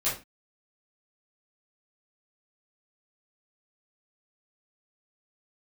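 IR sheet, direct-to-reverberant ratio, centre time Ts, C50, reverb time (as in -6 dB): -10.5 dB, 35 ms, 6.0 dB, not exponential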